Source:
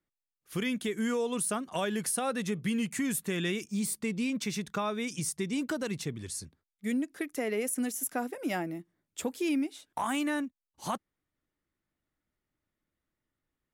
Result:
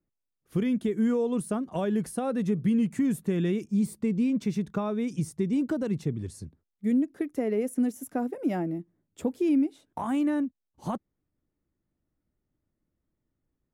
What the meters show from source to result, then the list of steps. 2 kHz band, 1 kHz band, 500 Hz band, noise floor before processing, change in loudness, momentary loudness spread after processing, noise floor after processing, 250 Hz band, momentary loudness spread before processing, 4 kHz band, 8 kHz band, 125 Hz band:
-7.0 dB, -1.5 dB, +4.0 dB, under -85 dBFS, +4.0 dB, 10 LU, -84 dBFS, +6.5 dB, 8 LU, no reading, -11.0 dB, +7.0 dB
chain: tilt shelf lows +9.5 dB, about 920 Hz; trim -1.5 dB

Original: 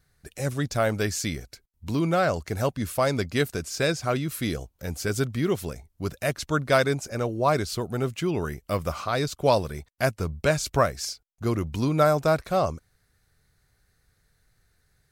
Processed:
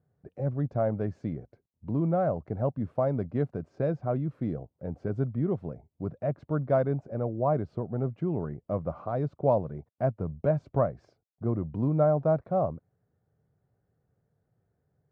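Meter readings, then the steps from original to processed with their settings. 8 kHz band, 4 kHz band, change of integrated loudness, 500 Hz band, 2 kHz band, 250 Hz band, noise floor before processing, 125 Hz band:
under -40 dB, under -30 dB, -3.5 dB, -3.0 dB, -18.5 dB, -2.5 dB, -70 dBFS, -1.0 dB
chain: dynamic bell 400 Hz, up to -5 dB, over -36 dBFS, Q 1.5; Chebyshev band-pass 120–660 Hz, order 2

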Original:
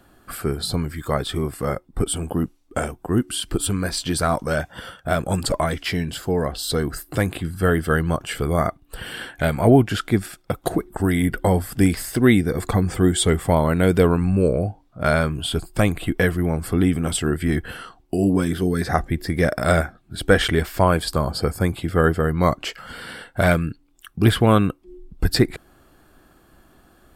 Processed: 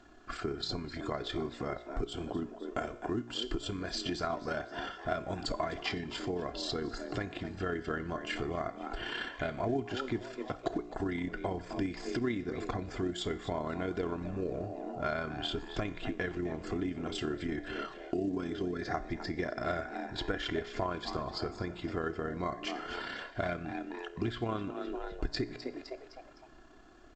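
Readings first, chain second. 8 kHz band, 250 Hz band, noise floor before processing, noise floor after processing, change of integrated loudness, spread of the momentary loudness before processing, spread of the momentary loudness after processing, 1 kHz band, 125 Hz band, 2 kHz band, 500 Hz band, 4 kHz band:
-22.0 dB, -15.0 dB, -56 dBFS, -53 dBFS, -15.5 dB, 11 LU, 5 LU, -12.5 dB, -20.0 dB, -13.5 dB, -14.0 dB, -11.0 dB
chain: AM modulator 33 Hz, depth 30%; distance through air 51 m; feedback comb 59 Hz, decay 0.59 s, harmonics all, mix 50%; on a send: frequency-shifting echo 256 ms, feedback 42%, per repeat +130 Hz, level -16 dB; on the sum: compression 4:1, threshold -34 dBFS, peak gain reduction 16 dB; peaking EQ 75 Hz -10 dB 0.72 oct; comb 2.9 ms, depth 49%; trim +1.5 dB; A-law 128 kbps 16 kHz

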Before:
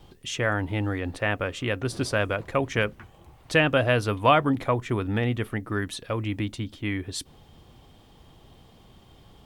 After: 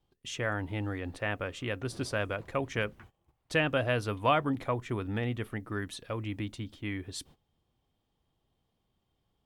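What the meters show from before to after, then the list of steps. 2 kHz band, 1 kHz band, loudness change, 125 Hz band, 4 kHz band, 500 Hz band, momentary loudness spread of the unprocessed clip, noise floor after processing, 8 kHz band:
-7.0 dB, -7.0 dB, -7.0 dB, -7.0 dB, -7.0 dB, -7.0 dB, 10 LU, -79 dBFS, -7.0 dB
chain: gate -46 dBFS, range -18 dB; trim -7 dB

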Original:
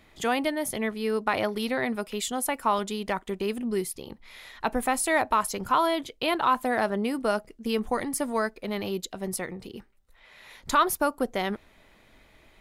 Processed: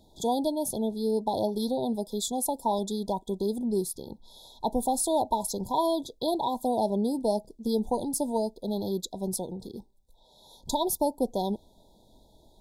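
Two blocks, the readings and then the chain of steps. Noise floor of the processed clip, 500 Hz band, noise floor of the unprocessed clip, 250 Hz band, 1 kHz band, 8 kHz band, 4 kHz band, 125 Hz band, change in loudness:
-60 dBFS, 0.0 dB, -59 dBFS, +1.0 dB, -3.5 dB, 0.0 dB, -3.0 dB, +1.5 dB, -1.5 dB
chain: brick-wall FIR band-stop 1–3.3 kHz; peaking EQ 200 Hz +2 dB 0.39 oct

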